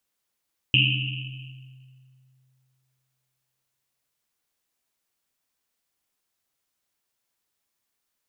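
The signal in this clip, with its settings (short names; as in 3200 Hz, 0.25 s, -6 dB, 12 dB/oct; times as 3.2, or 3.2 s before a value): Risset drum length 3.56 s, pitch 130 Hz, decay 2.64 s, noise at 2800 Hz, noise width 500 Hz, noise 55%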